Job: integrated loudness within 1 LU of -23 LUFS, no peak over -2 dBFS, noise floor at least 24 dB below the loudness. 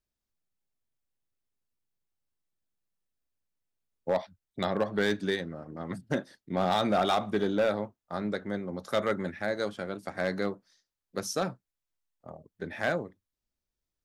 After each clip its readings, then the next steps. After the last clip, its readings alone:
clipped samples 0.3%; clipping level -19.0 dBFS; loudness -31.5 LUFS; peak level -19.0 dBFS; loudness target -23.0 LUFS
-> clip repair -19 dBFS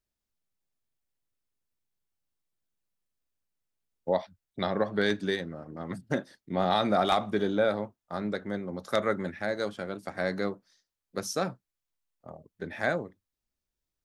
clipped samples 0.0%; loudness -30.5 LUFS; peak level -10.0 dBFS; loudness target -23.0 LUFS
-> trim +7.5 dB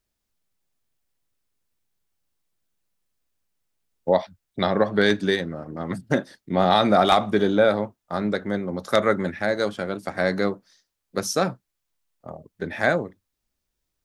loudness -23.0 LUFS; peak level -2.5 dBFS; noise floor -80 dBFS

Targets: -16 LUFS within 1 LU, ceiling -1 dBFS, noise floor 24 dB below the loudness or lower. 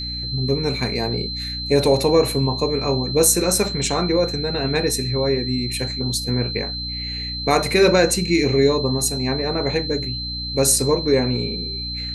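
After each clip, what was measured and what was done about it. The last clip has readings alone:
hum 60 Hz; highest harmonic 300 Hz; hum level -30 dBFS; steady tone 4.1 kHz; tone level -27 dBFS; loudness -20.0 LUFS; peak level -3.0 dBFS; loudness target -16.0 LUFS
-> de-hum 60 Hz, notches 5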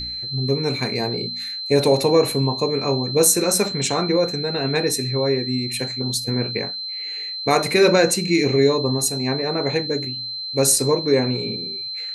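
hum not found; steady tone 4.1 kHz; tone level -27 dBFS
-> band-stop 4.1 kHz, Q 30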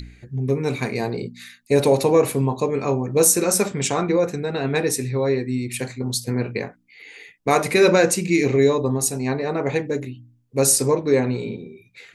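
steady tone not found; loudness -20.5 LUFS; peak level -3.0 dBFS; loudness target -16.0 LUFS
-> trim +4.5 dB; peak limiter -1 dBFS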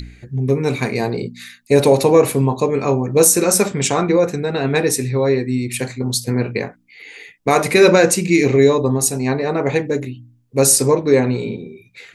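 loudness -16.5 LUFS; peak level -1.0 dBFS; noise floor -52 dBFS

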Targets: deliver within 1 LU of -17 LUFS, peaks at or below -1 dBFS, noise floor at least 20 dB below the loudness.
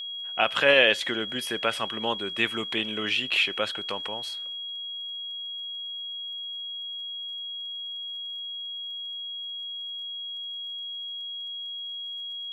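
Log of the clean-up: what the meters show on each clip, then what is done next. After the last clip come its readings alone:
tick rate 30 per s; steady tone 3.3 kHz; tone level -33 dBFS; loudness -28.5 LUFS; peak level -7.5 dBFS; loudness target -17.0 LUFS
-> de-click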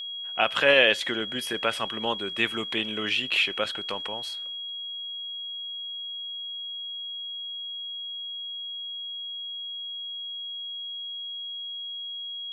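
tick rate 0 per s; steady tone 3.3 kHz; tone level -33 dBFS
-> band-stop 3.3 kHz, Q 30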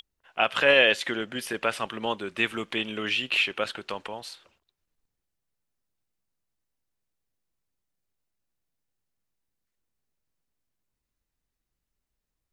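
steady tone not found; loudness -25.0 LUFS; peak level -7.5 dBFS; loudness target -17.0 LUFS
-> trim +8 dB; peak limiter -1 dBFS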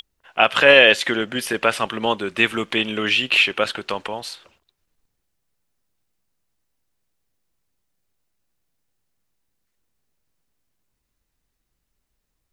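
loudness -17.5 LUFS; peak level -1.0 dBFS; noise floor -76 dBFS

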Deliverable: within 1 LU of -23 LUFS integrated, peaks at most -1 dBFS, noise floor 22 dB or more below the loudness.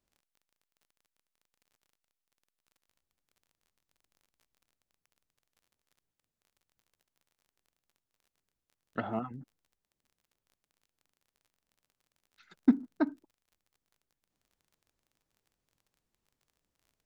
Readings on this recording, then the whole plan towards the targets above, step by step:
tick rate 29 per s; loudness -32.5 LUFS; peak level -11.0 dBFS; loudness target -23.0 LUFS
-> de-click; trim +9.5 dB

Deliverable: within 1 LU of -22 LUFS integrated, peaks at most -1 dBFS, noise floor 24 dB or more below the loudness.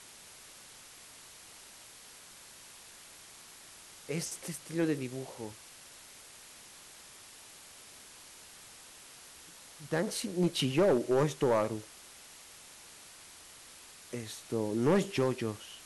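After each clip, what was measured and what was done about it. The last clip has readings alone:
clipped samples 0.4%; clipping level -21.0 dBFS; noise floor -53 dBFS; noise floor target -56 dBFS; loudness -32.0 LUFS; peak level -21.0 dBFS; loudness target -22.0 LUFS
-> clip repair -21 dBFS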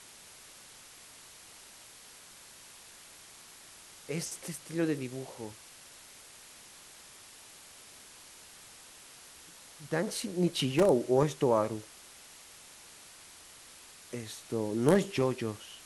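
clipped samples 0.0%; noise floor -53 dBFS; noise floor target -55 dBFS
-> noise reduction 6 dB, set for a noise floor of -53 dBFS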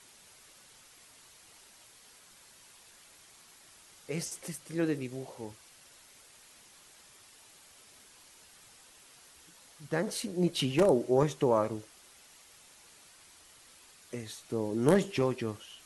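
noise floor -58 dBFS; loudness -31.0 LUFS; peak level -12.0 dBFS; loudness target -22.0 LUFS
-> trim +9 dB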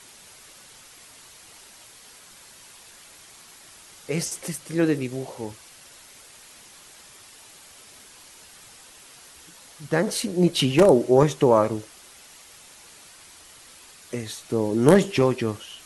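loudness -22.0 LUFS; peak level -3.0 dBFS; noise floor -49 dBFS

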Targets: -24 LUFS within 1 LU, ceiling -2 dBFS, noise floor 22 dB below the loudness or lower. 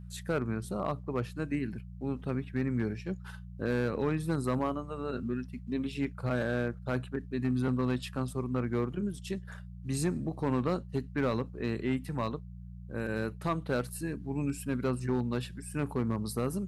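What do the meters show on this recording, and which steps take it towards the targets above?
clipped samples 0.8%; clipping level -22.0 dBFS; hum 60 Hz; highest harmonic 180 Hz; hum level -43 dBFS; loudness -33.5 LUFS; peak level -22.0 dBFS; loudness target -24.0 LUFS
-> clip repair -22 dBFS; de-hum 60 Hz, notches 3; trim +9.5 dB

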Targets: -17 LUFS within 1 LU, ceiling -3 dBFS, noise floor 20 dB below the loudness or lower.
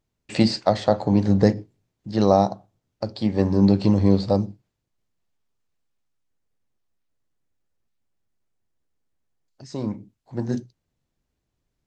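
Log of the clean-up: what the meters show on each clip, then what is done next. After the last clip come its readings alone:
loudness -21.5 LUFS; peak level -3.5 dBFS; loudness target -17.0 LUFS
-> trim +4.5 dB; peak limiter -3 dBFS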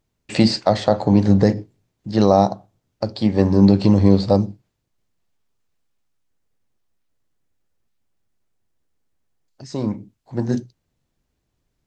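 loudness -17.5 LUFS; peak level -3.0 dBFS; noise floor -74 dBFS

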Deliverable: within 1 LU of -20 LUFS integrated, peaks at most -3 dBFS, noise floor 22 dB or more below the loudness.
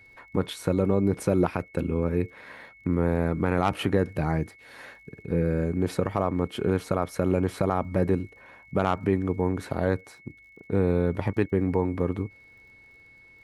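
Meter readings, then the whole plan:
tick rate 42 per s; steady tone 2.2 kHz; tone level -51 dBFS; loudness -27.0 LUFS; peak level -9.0 dBFS; loudness target -20.0 LUFS
-> de-click; band-stop 2.2 kHz, Q 30; trim +7 dB; peak limiter -3 dBFS

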